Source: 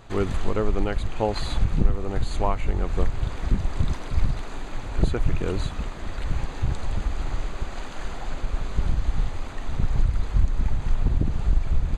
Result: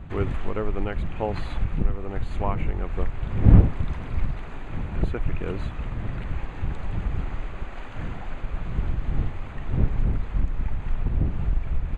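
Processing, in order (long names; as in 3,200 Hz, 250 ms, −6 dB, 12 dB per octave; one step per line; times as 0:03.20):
wind on the microphone 110 Hz −24 dBFS
high shelf with overshoot 3,500 Hz −10 dB, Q 1.5
level −3.5 dB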